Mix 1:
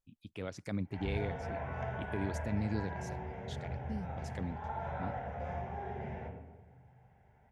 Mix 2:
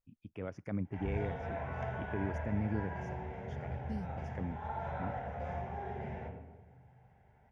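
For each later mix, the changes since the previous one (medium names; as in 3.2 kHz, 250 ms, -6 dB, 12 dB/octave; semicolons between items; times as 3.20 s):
first voice: add boxcar filter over 11 samples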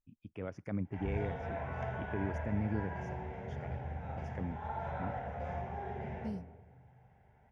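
second voice: entry +2.35 s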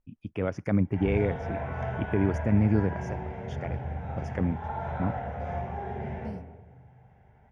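first voice +12.0 dB; background: send +7.0 dB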